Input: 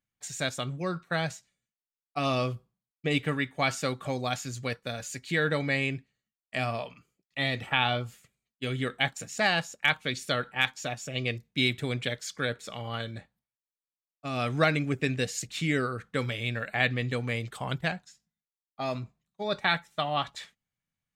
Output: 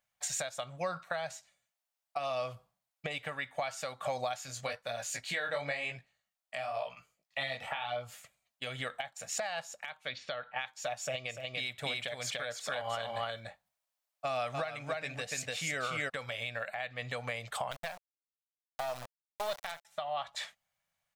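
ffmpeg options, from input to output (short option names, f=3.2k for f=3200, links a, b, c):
-filter_complex "[0:a]asplit=3[a][b][c];[a]afade=t=out:st=4.46:d=0.02[d];[b]flanger=delay=16.5:depth=6.4:speed=1,afade=t=in:st=4.46:d=0.02,afade=t=out:st=8.07:d=0.02[e];[c]afade=t=in:st=8.07:d=0.02[f];[d][e][f]amix=inputs=3:normalize=0,asettb=1/sr,asplit=3[g][h][i];[g]atrim=end=10.094[j];[h]atrim=start=10.09:end=10.66,asetpts=PTS-STARTPTS,afade=t=in:d=0.004:c=qsin,afade=t=out:st=0.566:d=0.004:c=qsin,lowpass=f=4.3k:w=0.5412,lowpass=f=4.3k:w=1.3066[k];[i]atrim=start=10.656[l];[j][k]acrossfade=d=0.004:c1=hsin:c2=qsin[m];[m][l]acrossfade=d=0.004:c1=qsin:c2=hsin,asplit=3[n][o][p];[n]afade=t=out:st=11.28:d=0.02[q];[o]aecho=1:1:292:0.668,afade=t=in:st=11.28:d=0.02,afade=t=out:st=16.08:d=0.02[r];[p]afade=t=in:st=16.08:d=0.02[s];[q][r][s]amix=inputs=3:normalize=0,asettb=1/sr,asplit=3[t][u][v];[t]atrim=end=17.714[w];[u]atrim=start=17.71:end=19.85,asetpts=PTS-STARTPTS,afade=t=in:d=0.004:c=qsin,afade=t=out:st=2.136:d=0.004:c=qsin,acrusher=bits=4:dc=4:mix=0:aa=0.000001[x];[v]atrim=start=19.846[y];[w][x]acrossfade=d=0.004:c1=hsin:c2=qsin[z];[z][y]acrossfade=d=0.004:c1=qsin:c2=hsin,lowshelf=f=470:t=q:w=3:g=-10,acompressor=threshold=-35dB:ratio=10,alimiter=level_in=5.5dB:limit=-24dB:level=0:latency=1:release=401,volume=-5.5dB,volume=6dB"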